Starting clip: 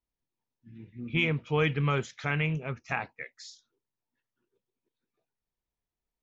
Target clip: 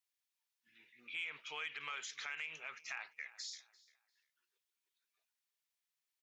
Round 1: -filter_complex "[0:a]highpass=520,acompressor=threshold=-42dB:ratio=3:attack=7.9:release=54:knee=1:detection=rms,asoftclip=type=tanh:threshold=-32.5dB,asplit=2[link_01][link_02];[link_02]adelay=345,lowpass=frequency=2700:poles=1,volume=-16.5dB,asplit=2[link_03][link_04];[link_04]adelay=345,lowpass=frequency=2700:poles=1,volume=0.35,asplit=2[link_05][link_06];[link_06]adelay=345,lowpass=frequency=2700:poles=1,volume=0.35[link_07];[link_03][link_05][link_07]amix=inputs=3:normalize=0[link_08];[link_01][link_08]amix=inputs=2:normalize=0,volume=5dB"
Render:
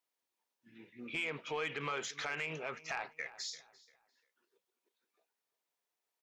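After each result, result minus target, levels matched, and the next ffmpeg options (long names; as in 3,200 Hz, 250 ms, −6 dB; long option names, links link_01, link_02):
500 Hz band +13.5 dB; downward compressor: peak gain reduction −4 dB
-filter_complex "[0:a]highpass=1800,acompressor=threshold=-42dB:ratio=3:attack=7.9:release=54:knee=1:detection=rms,asoftclip=type=tanh:threshold=-32.5dB,asplit=2[link_01][link_02];[link_02]adelay=345,lowpass=frequency=2700:poles=1,volume=-16.5dB,asplit=2[link_03][link_04];[link_04]adelay=345,lowpass=frequency=2700:poles=1,volume=0.35,asplit=2[link_05][link_06];[link_06]adelay=345,lowpass=frequency=2700:poles=1,volume=0.35[link_07];[link_03][link_05][link_07]amix=inputs=3:normalize=0[link_08];[link_01][link_08]amix=inputs=2:normalize=0,volume=5dB"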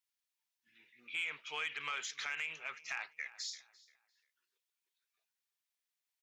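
downward compressor: peak gain reduction −5 dB
-filter_complex "[0:a]highpass=1800,acompressor=threshold=-49.5dB:ratio=3:attack=7.9:release=54:knee=1:detection=rms,asoftclip=type=tanh:threshold=-32.5dB,asplit=2[link_01][link_02];[link_02]adelay=345,lowpass=frequency=2700:poles=1,volume=-16.5dB,asplit=2[link_03][link_04];[link_04]adelay=345,lowpass=frequency=2700:poles=1,volume=0.35,asplit=2[link_05][link_06];[link_06]adelay=345,lowpass=frequency=2700:poles=1,volume=0.35[link_07];[link_03][link_05][link_07]amix=inputs=3:normalize=0[link_08];[link_01][link_08]amix=inputs=2:normalize=0,volume=5dB"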